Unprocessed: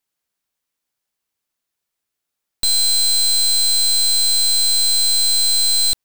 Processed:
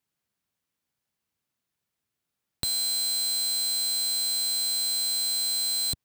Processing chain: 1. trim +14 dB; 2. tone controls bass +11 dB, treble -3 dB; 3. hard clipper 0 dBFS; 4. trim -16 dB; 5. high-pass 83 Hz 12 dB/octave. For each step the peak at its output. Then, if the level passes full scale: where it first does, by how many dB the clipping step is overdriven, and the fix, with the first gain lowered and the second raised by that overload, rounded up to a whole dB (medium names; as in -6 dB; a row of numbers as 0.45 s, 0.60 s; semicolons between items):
-1.0 dBFS, +6.0 dBFS, 0.0 dBFS, -16.0 dBFS, -16.5 dBFS; step 2, 6.0 dB; step 1 +8 dB, step 4 -10 dB